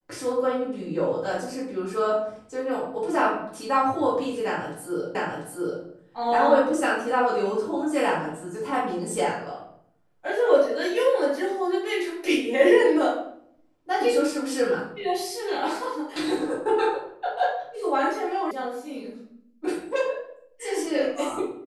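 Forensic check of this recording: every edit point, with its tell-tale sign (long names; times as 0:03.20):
0:05.15: the same again, the last 0.69 s
0:18.51: cut off before it has died away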